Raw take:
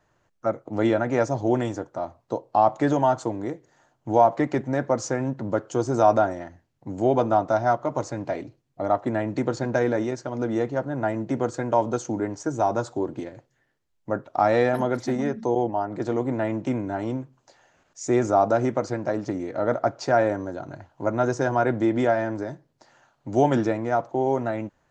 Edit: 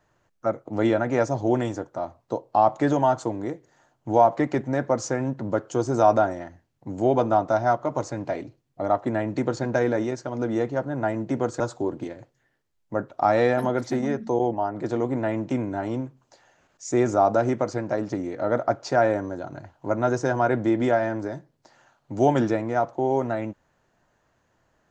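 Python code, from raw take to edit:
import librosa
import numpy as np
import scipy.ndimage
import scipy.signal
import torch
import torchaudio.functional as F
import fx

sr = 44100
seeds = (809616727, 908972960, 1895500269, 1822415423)

y = fx.edit(x, sr, fx.cut(start_s=11.6, length_s=1.16), tone=tone)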